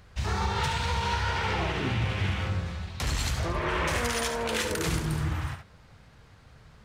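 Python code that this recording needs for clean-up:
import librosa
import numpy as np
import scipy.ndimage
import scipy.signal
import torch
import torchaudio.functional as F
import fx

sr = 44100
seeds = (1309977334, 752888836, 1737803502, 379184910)

y = fx.fix_echo_inverse(x, sr, delay_ms=71, level_db=-8.0)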